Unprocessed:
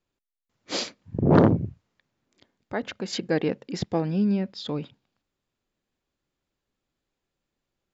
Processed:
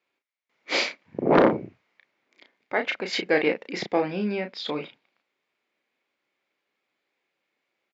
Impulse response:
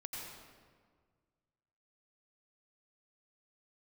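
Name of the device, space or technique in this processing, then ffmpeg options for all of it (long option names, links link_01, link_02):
intercom: -filter_complex "[0:a]highpass=390,lowpass=4300,equalizer=frequency=2200:width_type=o:width=0.4:gain=10.5,asoftclip=type=tanh:threshold=-9dB,asplit=2[link_01][link_02];[link_02]adelay=33,volume=-6.5dB[link_03];[link_01][link_03]amix=inputs=2:normalize=0,volume=4.5dB"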